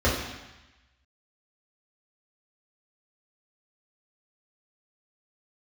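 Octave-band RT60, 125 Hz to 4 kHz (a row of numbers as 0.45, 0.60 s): 1.1, 1.0, 0.95, 1.1, 1.2, 1.2 s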